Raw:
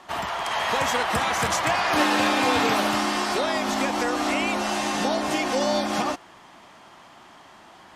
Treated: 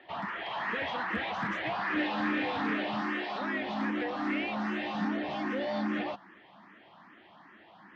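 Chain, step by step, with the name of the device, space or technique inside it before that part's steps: 3.01–3.41 HPF 280 Hz; barber-pole phaser into a guitar amplifier (endless phaser +2.5 Hz; soft clip -24 dBFS, distortion -13 dB; speaker cabinet 91–3600 Hz, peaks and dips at 200 Hz +9 dB, 310 Hz +6 dB, 1800 Hz +7 dB); gain -5.5 dB

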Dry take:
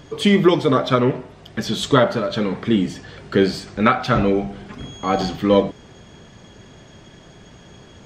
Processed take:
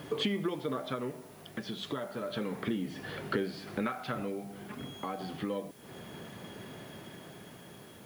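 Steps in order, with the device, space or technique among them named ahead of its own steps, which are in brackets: medium wave at night (BPF 140–3700 Hz; compressor 10:1, threshold -29 dBFS, peak gain reduction 20.5 dB; tremolo 0.31 Hz, depth 51%; whine 10000 Hz -66 dBFS; white noise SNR 24 dB)

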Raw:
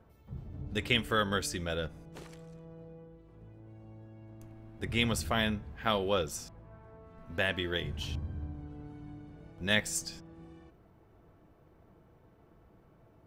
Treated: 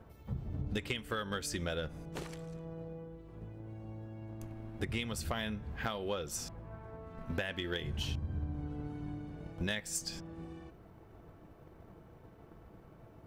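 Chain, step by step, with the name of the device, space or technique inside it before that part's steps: drum-bus smash (transient shaper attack +5 dB, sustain 0 dB; compressor 16:1, threshold -36 dBFS, peak gain reduction 18 dB; soft clip -27 dBFS, distortion -23 dB); gain +4.5 dB

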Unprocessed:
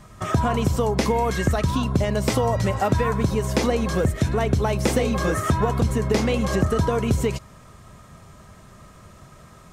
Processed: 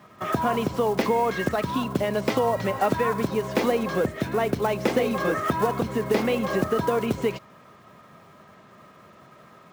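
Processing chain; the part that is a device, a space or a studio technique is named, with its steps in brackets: early digital voice recorder (BPF 220–3400 Hz; block floating point 5-bit)

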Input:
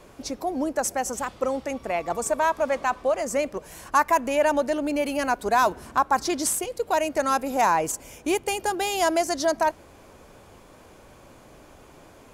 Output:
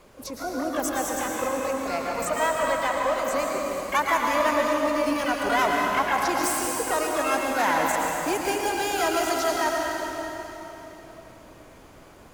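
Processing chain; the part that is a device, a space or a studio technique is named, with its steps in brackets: shimmer-style reverb (harmoniser +12 st -6 dB; reverb RT60 3.6 s, pre-delay 0.101 s, DRR -1 dB); gain -4.5 dB

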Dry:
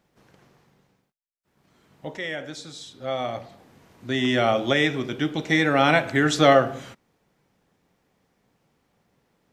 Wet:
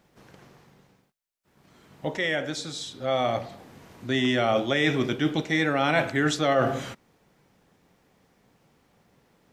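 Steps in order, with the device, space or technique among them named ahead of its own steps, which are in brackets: compression on the reversed sound (reverse; compressor 6:1, threshold -25 dBFS, peak gain reduction 13.5 dB; reverse); gain +5 dB

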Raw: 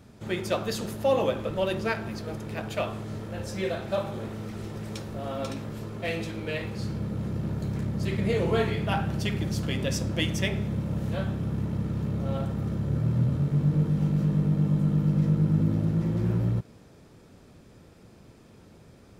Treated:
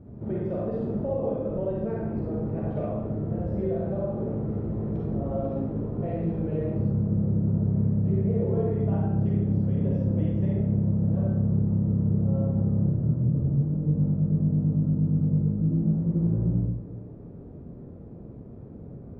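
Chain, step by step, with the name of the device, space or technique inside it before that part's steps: television next door (compressor, threshold -32 dBFS, peak gain reduction 13 dB; LPF 490 Hz 12 dB/oct; reverb RT60 0.80 s, pre-delay 36 ms, DRR -4 dB); gain +5 dB

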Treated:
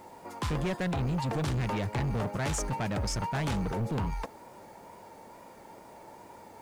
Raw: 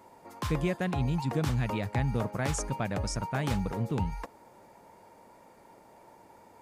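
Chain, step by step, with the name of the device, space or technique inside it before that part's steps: compact cassette (soft clip -32.5 dBFS, distortion -8 dB; LPF 11000 Hz 12 dB/oct; wow and flutter; white noise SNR 35 dB); gain +5.5 dB

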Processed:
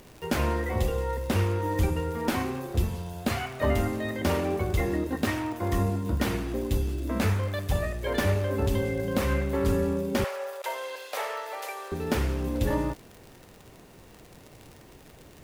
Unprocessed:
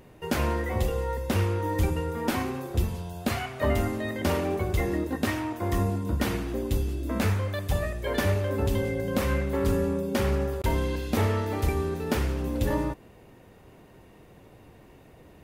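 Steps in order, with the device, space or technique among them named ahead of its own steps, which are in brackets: record under a worn stylus (tracing distortion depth 0.024 ms; crackle 71/s -36 dBFS; pink noise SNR 30 dB); 10.24–11.92 Chebyshev high-pass 530 Hz, order 4

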